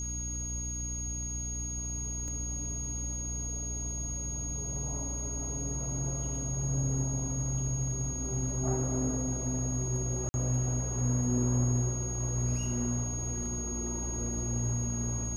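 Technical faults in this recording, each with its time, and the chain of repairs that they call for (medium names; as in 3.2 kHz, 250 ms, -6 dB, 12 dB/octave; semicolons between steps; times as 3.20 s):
hum 60 Hz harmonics 5 -38 dBFS
whine 6.6 kHz -36 dBFS
2.28 s: dropout 2.7 ms
10.29–10.34 s: dropout 50 ms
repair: de-hum 60 Hz, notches 5; band-stop 6.6 kHz, Q 30; interpolate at 2.28 s, 2.7 ms; interpolate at 10.29 s, 50 ms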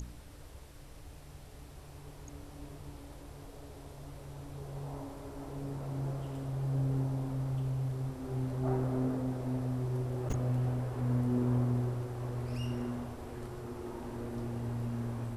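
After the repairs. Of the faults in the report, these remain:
nothing left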